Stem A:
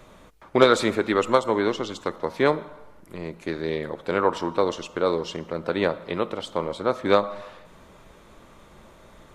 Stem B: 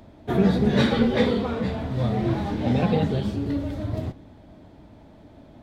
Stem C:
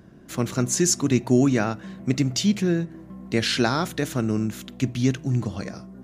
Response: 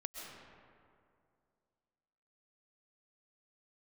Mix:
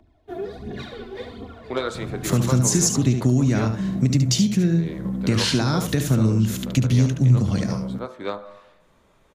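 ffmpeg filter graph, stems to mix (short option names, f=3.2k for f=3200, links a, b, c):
-filter_complex "[0:a]bandreject=f=46.55:t=h:w=4,bandreject=f=93.1:t=h:w=4,bandreject=f=139.65:t=h:w=4,bandreject=f=186.2:t=h:w=4,bandreject=f=232.75:t=h:w=4,bandreject=f=279.3:t=h:w=4,bandreject=f=325.85:t=h:w=4,bandreject=f=372.4:t=h:w=4,bandreject=f=418.95:t=h:w=4,bandreject=f=465.5:t=h:w=4,bandreject=f=512.05:t=h:w=4,bandreject=f=558.6:t=h:w=4,bandreject=f=605.15:t=h:w=4,bandreject=f=651.7:t=h:w=4,bandreject=f=698.25:t=h:w=4,bandreject=f=744.8:t=h:w=4,bandreject=f=791.35:t=h:w=4,bandreject=f=837.9:t=h:w=4,bandreject=f=884.45:t=h:w=4,bandreject=f=931:t=h:w=4,bandreject=f=977.55:t=h:w=4,bandreject=f=1.0241k:t=h:w=4,bandreject=f=1.07065k:t=h:w=4,bandreject=f=1.1172k:t=h:w=4,bandreject=f=1.16375k:t=h:w=4,bandreject=f=1.2103k:t=h:w=4,bandreject=f=1.25685k:t=h:w=4,bandreject=f=1.3034k:t=h:w=4,bandreject=f=1.34995k:t=h:w=4,bandreject=f=1.3965k:t=h:w=4,bandreject=f=1.44305k:t=h:w=4,bandreject=f=1.4896k:t=h:w=4,bandreject=f=1.53615k:t=h:w=4,bandreject=f=1.5827k:t=h:w=4,bandreject=f=1.62925k:t=h:w=4,bandreject=f=1.6758k:t=h:w=4,bandreject=f=1.72235k:t=h:w=4,bandreject=f=1.7689k:t=h:w=4,adelay=1150,volume=-9dB[a];[1:a]aecho=1:1:2.8:0.56,aphaser=in_gain=1:out_gain=1:delay=3.1:decay=0.67:speed=1.4:type=triangular,volume=-16.5dB,asplit=2[b][c];[c]volume=-9dB[d];[2:a]acompressor=threshold=-29dB:ratio=2.5,bass=f=250:g=11,treble=f=4k:g=5,acontrast=49,adelay=1950,volume=-1dB,asplit=2[e][f];[f]volume=-8dB[g];[d][g]amix=inputs=2:normalize=0,aecho=0:1:72:1[h];[a][b][e][h]amix=inputs=4:normalize=0,acrossover=split=130|3000[i][j][k];[j]acompressor=threshold=-17dB:ratio=6[l];[i][l][k]amix=inputs=3:normalize=0"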